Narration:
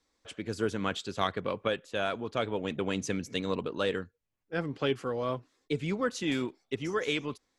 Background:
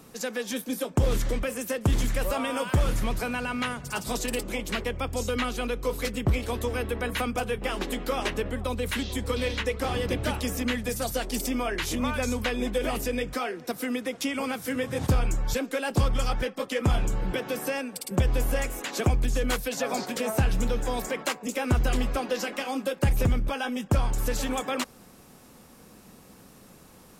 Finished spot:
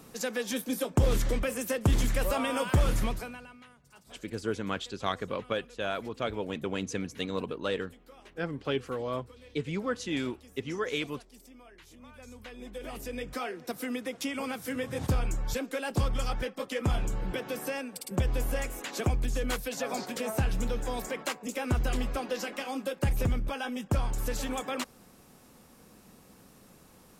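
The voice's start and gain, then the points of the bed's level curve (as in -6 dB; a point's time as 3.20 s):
3.85 s, -1.5 dB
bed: 3.04 s -1 dB
3.63 s -25 dB
11.97 s -25 dB
13.43 s -4.5 dB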